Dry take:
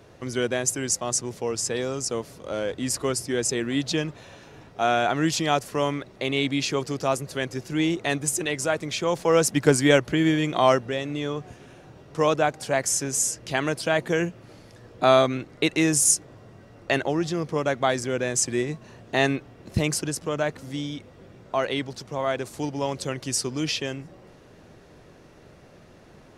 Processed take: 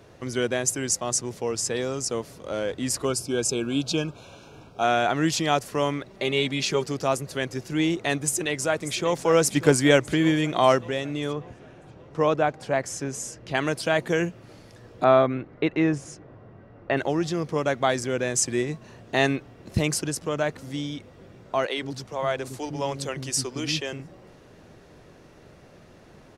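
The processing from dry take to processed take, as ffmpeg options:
ffmpeg -i in.wav -filter_complex "[0:a]asettb=1/sr,asplit=3[link_01][link_02][link_03];[link_01]atrim=end=3.054[link_04];[link_02]atrim=start=3.05:end=4.84,asetpts=PTS-STARTPTS,afade=type=in:duration=0.004:curve=qsin,afade=type=out:start_time=1.786:duration=0.004:curve=qsin,asuperstop=centerf=1900:order=20:qfactor=3.7[link_05];[link_03]atrim=start=4.836[link_06];[link_04][link_05]acrossfade=duration=0.004:curve1=hsin:curve2=qsin[link_07];[link_07][link_06]acrossfade=duration=0.004:curve1=qsin:curve2=hsin,asettb=1/sr,asplit=3[link_08][link_09][link_10];[link_08]atrim=end=6.104[link_11];[link_09]atrim=start=6.1:end=6.86,asetpts=PTS-STARTPTS,afade=type=in:duration=0.004:curve=qsin,afade=type=out:start_time=0.756:duration=0.004:curve=qsin,aecho=1:1:5.1:0.52,atrim=end_sample=33516[link_12];[link_10]atrim=start=6.856[link_13];[link_11][link_12]acrossfade=duration=0.004:curve1=hsin:curve2=qsin[link_14];[link_14][link_13]acrossfade=duration=0.004:curve1=qsin:curve2=hsin,asplit=2[link_15][link_16];[link_16]afade=type=in:start_time=8.24:duration=0.01,afade=type=out:start_time=9.21:duration=0.01,aecho=0:1:590|1180|1770|2360|2950|3540|4130:0.237137|0.142282|0.0853695|0.0512217|0.030733|0.0184398|0.0110639[link_17];[link_15][link_17]amix=inputs=2:normalize=0,asettb=1/sr,asplit=3[link_18][link_19][link_20];[link_18]atrim=end=11.334[link_21];[link_19]atrim=start=11.33:end=13.55,asetpts=PTS-STARTPTS,afade=type=in:duration=0.004:curve=qsin,afade=type=out:start_time=2.216:duration=0.004:curve=qsin,lowpass=frequency=2100:poles=1[link_22];[link_20]atrim=start=13.546[link_23];[link_21][link_22]acrossfade=duration=0.004:curve1=hsin:curve2=qsin[link_24];[link_24][link_23]acrossfade=duration=0.004:curve1=qsin:curve2=hsin,asplit=3[link_25][link_26][link_27];[link_25]afade=type=out:start_time=15.03:duration=0.02[link_28];[link_26]lowpass=1900,afade=type=in:start_time=15.03:duration=0.02,afade=type=out:start_time=16.96:duration=0.02[link_29];[link_27]afade=type=in:start_time=16.96:duration=0.02[link_30];[link_28][link_29][link_30]amix=inputs=3:normalize=0,asettb=1/sr,asplit=3[link_31][link_32][link_33];[link_31]atrim=end=21.664[link_34];[link_32]atrim=start=21.66:end=24,asetpts=PTS-STARTPTS,afade=type=in:duration=0.004:curve=qsin,afade=type=out:start_time=2.336:duration=0.004:curve=qsin,acrossover=split=290[link_35][link_36];[link_35]adelay=110[link_37];[link_37][link_36]amix=inputs=2:normalize=0,atrim=end_sample=103194[link_38];[link_33]atrim=start=23.996[link_39];[link_34][link_38]acrossfade=duration=0.004:curve1=hsin:curve2=qsin[link_40];[link_40][link_39]acrossfade=duration=0.004:curve1=qsin:curve2=hsin" out.wav

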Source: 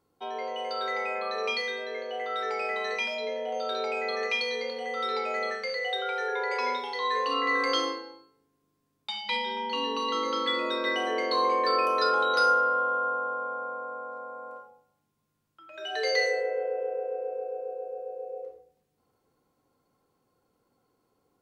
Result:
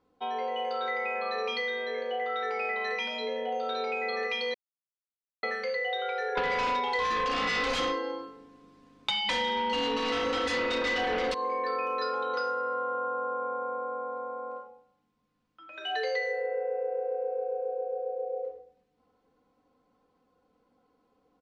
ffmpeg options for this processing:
ffmpeg -i in.wav -filter_complex "[0:a]asettb=1/sr,asplit=3[link_01][link_02][link_03];[link_01]atrim=end=6.374[link_04];[link_02]atrim=start=6.37:end=11.34,asetpts=PTS-STARTPTS,afade=type=in:duration=0.004:curve=qsin,afade=type=out:start_time=4.966:duration=0.004:curve=qsin,aeval=exprs='0.188*sin(PI/2*3.98*val(0)/0.188)':channel_layout=same[link_05];[link_03]atrim=start=11.336[link_06];[link_04][link_05]acrossfade=duration=0.004:curve1=hsin:curve2=qsin[link_07];[link_07][link_06]acrossfade=duration=0.004:curve1=qsin:curve2=hsin,asplit=3[link_08][link_09][link_10];[link_08]atrim=end=4.54,asetpts=PTS-STARTPTS,afade=type=out:start_time=4.536:duration=0.004:curve=hsin[link_11];[link_09]atrim=start=4.54:end=5.43,asetpts=PTS-STARTPTS,volume=0[link_12];[link_10]atrim=start=5.43,asetpts=PTS-STARTPTS,afade=type=in:duration=0.004:curve=hsin[link_13];[link_11][link_12][link_13]concat=n=3:v=0:a=1,lowpass=4100,aecho=1:1:4:0.63,acompressor=threshold=-29dB:ratio=6,volume=1dB" out.wav

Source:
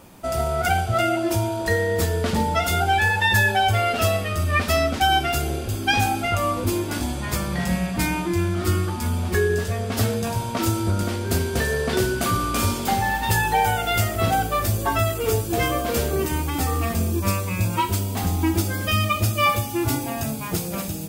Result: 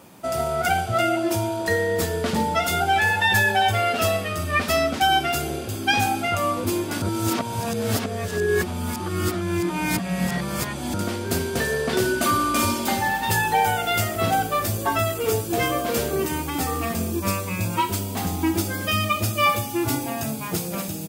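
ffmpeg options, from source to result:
ffmpeg -i in.wav -filter_complex "[0:a]asplit=2[link_01][link_02];[link_02]afade=type=in:start_time=2.55:duration=0.01,afade=type=out:start_time=3.31:duration=0.01,aecho=0:1:400|800|1200:0.199526|0.0498816|0.0124704[link_03];[link_01][link_03]amix=inputs=2:normalize=0,asettb=1/sr,asplit=3[link_04][link_05][link_06];[link_04]atrim=end=12.054[link_07];[link_05]atrim=start=12.05:end=13.08,asetpts=PTS-STARTPTS,afade=type=in:duration=0.004:curve=qsin,afade=type=out:start_time=1.026:duration=0.004:curve=qsin,aecho=1:1:3.3:0.59,atrim=end_sample=45423[link_08];[link_06]atrim=start=13.076[link_09];[link_07][link_08]acrossfade=duration=0.004:curve1=hsin:curve2=qsin[link_10];[link_10][link_09]acrossfade=duration=0.004:curve1=qsin:curve2=hsin,asplit=3[link_11][link_12][link_13];[link_11]atrim=end=7.022[link_14];[link_12]atrim=start=7.018:end=10.942,asetpts=PTS-STARTPTS,areverse[link_15];[link_13]atrim=start=10.938[link_16];[link_14][link_15]acrossfade=duration=0.004:curve1=hsin:curve2=hsin[link_17];[link_17][link_16]acrossfade=duration=0.004:curve1=hsin:curve2=hsin,highpass=120" out.wav

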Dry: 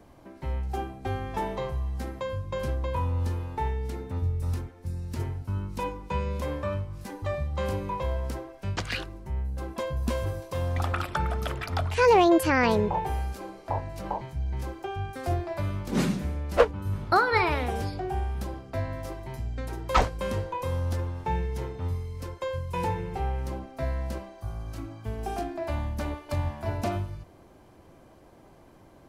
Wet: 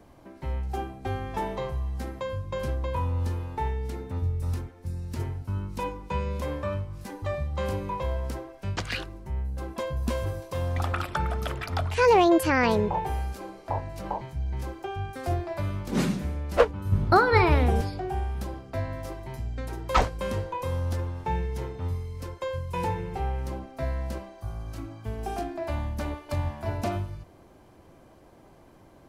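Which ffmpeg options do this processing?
ffmpeg -i in.wav -filter_complex "[0:a]asettb=1/sr,asplit=3[link_01][link_02][link_03];[link_01]atrim=end=16.924[link_04];[link_02]atrim=start=16.92:end=17.81,asetpts=PTS-STARTPTS,afade=type=in:duration=0.004:curve=qsin,afade=type=out:start_time=0.886:duration=0.004:curve=qsin,lowshelf=frequency=430:gain=10[link_05];[link_03]atrim=start=17.806[link_06];[link_04][link_05]acrossfade=duration=0.004:curve1=hsin:curve2=qsin[link_07];[link_07][link_06]acrossfade=duration=0.004:curve1=qsin:curve2=hsin" out.wav

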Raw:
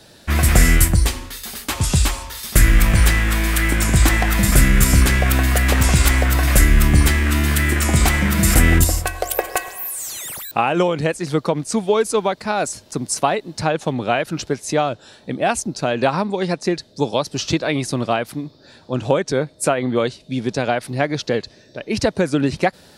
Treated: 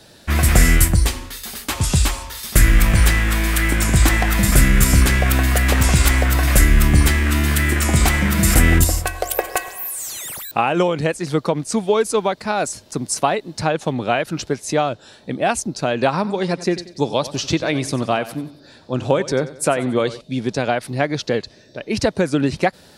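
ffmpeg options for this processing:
ffmpeg -i in.wav -filter_complex "[0:a]asettb=1/sr,asplit=3[link_01][link_02][link_03];[link_01]atrim=end=16.144[link_04];[link_02]atrim=start=16.14:end=20.21,asetpts=PTS-STARTPTS,afade=type=in:duration=0.004:curve=qsin,afade=type=out:start_time=4.066:duration=0.004:curve=qsin,aecho=1:1:92|184|276|368:0.168|0.0688|0.0282|0.0116,atrim=end_sample=179487[link_05];[link_03]atrim=start=20.206[link_06];[link_04][link_05]acrossfade=duration=0.004:curve1=hsin:curve2=qsin[link_07];[link_07][link_06]acrossfade=duration=0.004:curve1=qsin:curve2=hsin" out.wav

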